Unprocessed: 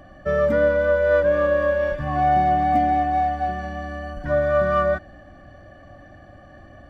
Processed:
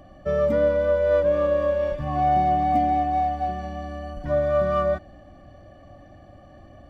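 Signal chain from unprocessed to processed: peaking EQ 1.6 kHz -11 dB 0.45 oct; trim -1.5 dB

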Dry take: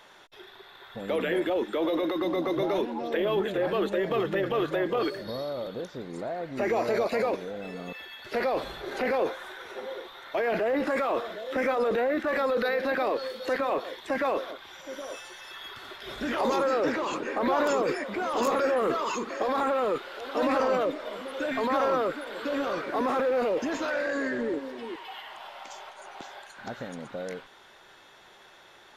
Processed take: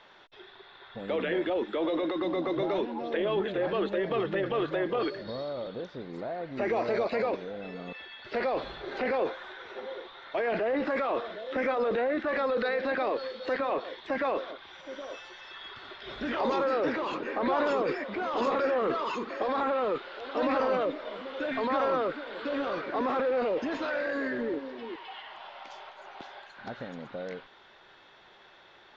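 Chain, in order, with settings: low-pass 4.7 kHz 24 dB/octave; trim -2 dB

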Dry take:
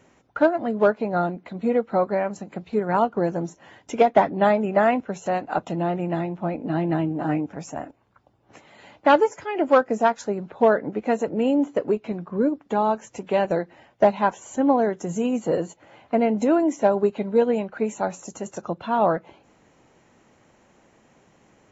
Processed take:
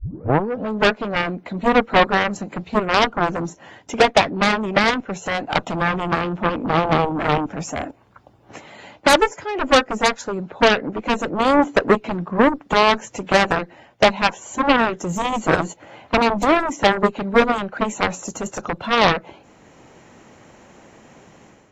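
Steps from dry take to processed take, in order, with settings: tape start-up on the opening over 0.73 s; level rider gain up to 10 dB; Chebyshev shaper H 5 -16 dB, 7 -6 dB, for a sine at -1 dBFS; trim -4 dB

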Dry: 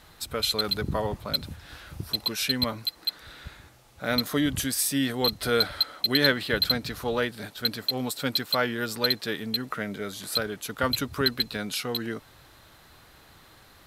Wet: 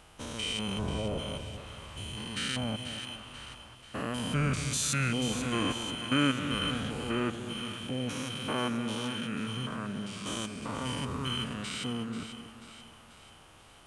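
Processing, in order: spectrogram pixelated in time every 200 ms; formant shift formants -5 st; two-band feedback delay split 840 Hz, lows 232 ms, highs 487 ms, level -10 dB; trim -1.5 dB

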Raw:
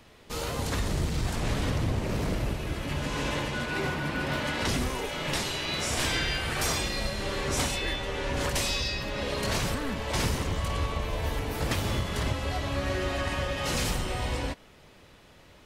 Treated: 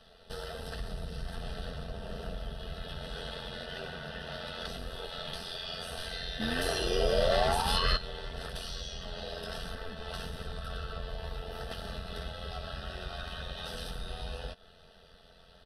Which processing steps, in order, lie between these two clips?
low-pass 8.8 kHz 24 dB/octave; comb 4.5 ms, depth 85%; compression 3:1, threshold -33 dBFS, peak gain reduction 9 dB; painted sound rise, 6.39–7.97 s, 210–1100 Hz -21 dBFS; formant shift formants +3 st; static phaser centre 1.5 kHz, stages 8; AM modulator 87 Hz, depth 40%

